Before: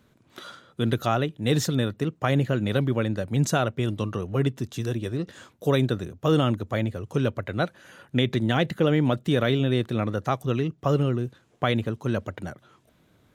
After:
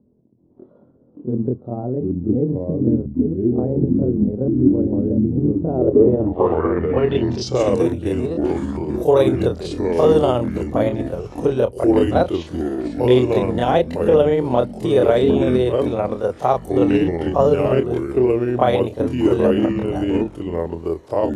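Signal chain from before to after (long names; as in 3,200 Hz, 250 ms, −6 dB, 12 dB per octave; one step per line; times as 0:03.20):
flat-topped bell 620 Hz +13 dB
delay with pitch and tempo change per echo 259 ms, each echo −4 semitones, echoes 3
time stretch by overlap-add 1.6×, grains 128 ms
low-pass filter sweep 250 Hz → 11,000 Hz, 0:05.64–0:07.87
level −1.5 dB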